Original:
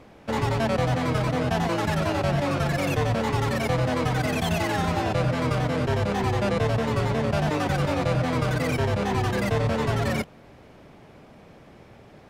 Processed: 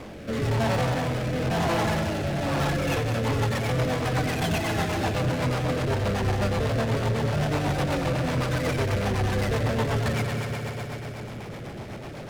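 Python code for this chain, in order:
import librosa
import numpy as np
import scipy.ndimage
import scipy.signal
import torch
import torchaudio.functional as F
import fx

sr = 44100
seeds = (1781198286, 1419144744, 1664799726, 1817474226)

y = fx.echo_heads(x, sr, ms=61, heads='first and third', feedback_pct=73, wet_db=-8.5)
y = fx.power_curve(y, sr, exponent=0.5)
y = fx.rotary_switch(y, sr, hz=1.0, then_hz=8.0, switch_at_s=2.46)
y = y * librosa.db_to_amplitude(-6.5)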